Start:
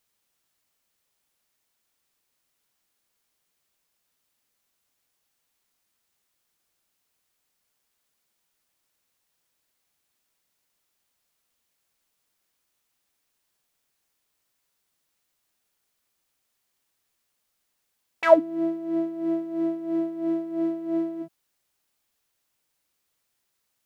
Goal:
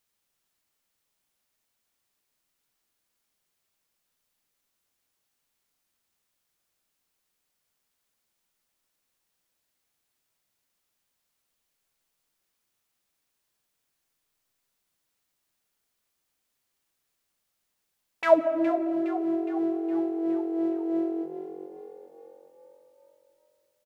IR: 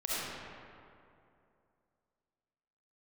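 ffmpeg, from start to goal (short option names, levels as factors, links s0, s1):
-filter_complex "[0:a]asplit=7[s0][s1][s2][s3][s4][s5][s6];[s1]adelay=414,afreqshift=45,volume=0.237[s7];[s2]adelay=828,afreqshift=90,volume=0.127[s8];[s3]adelay=1242,afreqshift=135,volume=0.0692[s9];[s4]adelay=1656,afreqshift=180,volume=0.0372[s10];[s5]adelay=2070,afreqshift=225,volume=0.0202[s11];[s6]adelay=2484,afreqshift=270,volume=0.0108[s12];[s0][s7][s8][s9][s10][s11][s12]amix=inputs=7:normalize=0,asplit=2[s13][s14];[1:a]atrim=start_sample=2205,lowshelf=f=490:g=11.5,adelay=69[s15];[s14][s15]afir=irnorm=-1:irlink=0,volume=0.0891[s16];[s13][s16]amix=inputs=2:normalize=0,volume=0.708"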